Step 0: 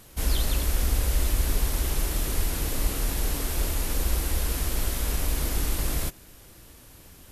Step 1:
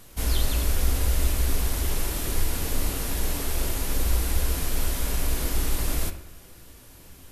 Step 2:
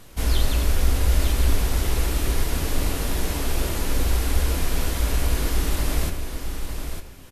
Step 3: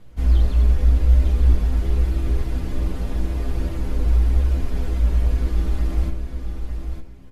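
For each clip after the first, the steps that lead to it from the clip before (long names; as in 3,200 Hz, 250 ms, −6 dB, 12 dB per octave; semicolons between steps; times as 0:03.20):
bucket-brigade delay 61 ms, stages 1,024, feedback 68%, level −15 dB; on a send at −9 dB: convolution reverb RT60 0.45 s, pre-delay 3 ms
high-shelf EQ 7,400 Hz −8 dB; on a send: single-tap delay 903 ms −7.5 dB; on the sum: level +3.5 dB
low-pass filter 2,400 Hz 6 dB per octave; low-shelf EQ 390 Hz +10 dB; stiff-string resonator 60 Hz, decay 0.23 s, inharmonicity 0.008; level −1.5 dB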